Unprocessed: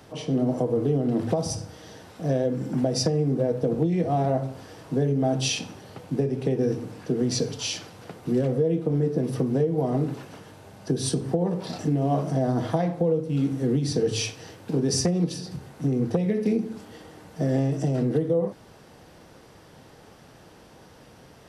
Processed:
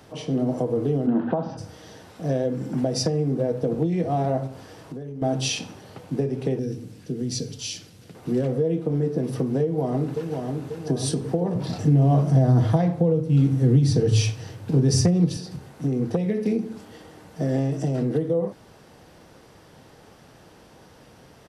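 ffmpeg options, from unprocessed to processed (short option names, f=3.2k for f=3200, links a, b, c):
-filter_complex "[0:a]asplit=3[a][b][c];[a]afade=t=out:st=1.06:d=0.02[d];[b]highpass=f=150:w=0.5412,highpass=f=150:w=1.3066,equalizer=f=250:t=q:w=4:g=6,equalizer=f=440:t=q:w=4:g=-4,equalizer=f=900:t=q:w=4:g=6,equalizer=f=1.5k:t=q:w=4:g=9,equalizer=f=2.2k:t=q:w=4:g=-8,lowpass=f=2.9k:w=0.5412,lowpass=f=2.9k:w=1.3066,afade=t=in:st=1.06:d=0.02,afade=t=out:st=1.57:d=0.02[e];[c]afade=t=in:st=1.57:d=0.02[f];[d][e][f]amix=inputs=3:normalize=0,asettb=1/sr,asplit=3[g][h][i];[g]atrim=end=4.474[j];[h]atrim=start=4.47:end=5.22,asetpts=PTS-STARTPTS,afade=t=in:d=0.004:c=qsin,afade=t=out:st=0.746:d=0.004:c=qsin,acompressor=threshold=-31dB:ratio=12:attack=3.2:release=140:knee=1:detection=peak[k];[i]atrim=start=5.216[l];[j][k]acrossfade=d=0.004:c1=hsin:c2=qsin[m];[m][l]acrossfade=d=0.004:c1=qsin:c2=hsin,asettb=1/sr,asplit=3[n][o][p];[n]atrim=end=6.594[q];[o]atrim=start=6.59:end=8.15,asetpts=PTS-STARTPTS,afade=t=in:d=0.004:c=qsin,afade=t=out:st=1.556:d=0.004:c=qsin,equalizer=f=930:t=o:w=2.2:g=-15[r];[p]atrim=start=8.146[s];[q][r]acrossfade=d=0.004:c1=hsin:c2=qsin[t];[t][s]acrossfade=d=0.004:c1=qsin:c2=hsin,asplit=2[u][v];[v]afade=t=in:st=9.62:d=0.01,afade=t=out:st=10.32:d=0.01,aecho=0:1:540|1080|1620|2160|2700|3240|3780:0.595662|0.327614|0.180188|0.0991033|0.0545068|0.0299787|0.0164883[w];[u][w]amix=inputs=2:normalize=0,asettb=1/sr,asplit=3[x][y][z];[x]atrim=end=11.554[aa];[y]atrim=start=11.55:end=15.37,asetpts=PTS-STARTPTS,afade=t=in:d=0.004:c=qsin,afade=t=out:st=3.816:d=0.004:c=qsin,equalizer=f=110:w=1.5:g=14.5[ab];[z]atrim=start=15.366[ac];[aa][ab]acrossfade=d=0.004:c1=hsin:c2=qsin[ad];[ad][ac]acrossfade=d=0.004:c1=qsin:c2=hsin"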